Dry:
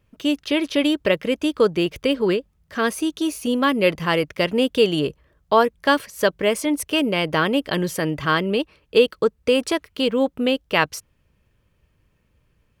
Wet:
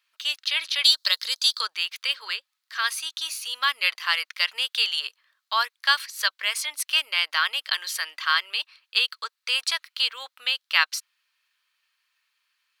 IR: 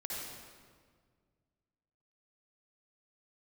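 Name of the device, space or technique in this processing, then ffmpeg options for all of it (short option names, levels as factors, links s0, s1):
headphones lying on a table: -filter_complex "[0:a]asettb=1/sr,asplit=3[s0][s1][s2];[s0]atrim=end=0.844[s3];[s1]atrim=start=0.84:end=1.61,asetpts=PTS-STARTPTS,afade=t=in:d=0.004:c=qsin,afade=t=out:st=0.766:d=0.004:c=qsin,highshelf=f=3300:t=q:w=3:g=8.5[s4];[s2]atrim=start=1.606[s5];[s3][s4]acrossfade=d=0.004:c1=hsin:c2=qsin[s6];[s6][s5]acrossfade=d=0.004:c1=qsin:c2=hsin,highpass=f=1200:w=0.5412,highpass=f=1200:w=1.3066,equalizer=f=4200:t=o:w=0.56:g=10"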